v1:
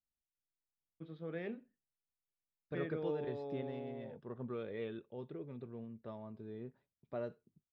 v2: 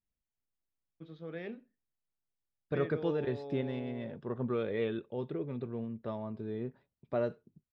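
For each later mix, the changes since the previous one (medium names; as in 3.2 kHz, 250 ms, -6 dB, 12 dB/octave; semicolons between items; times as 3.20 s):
first voice: remove distance through air 160 m; second voice +9.0 dB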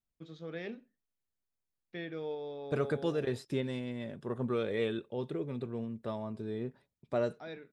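first voice: entry -0.80 s; master: remove distance through air 240 m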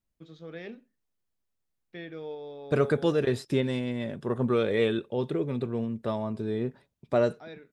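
second voice +7.5 dB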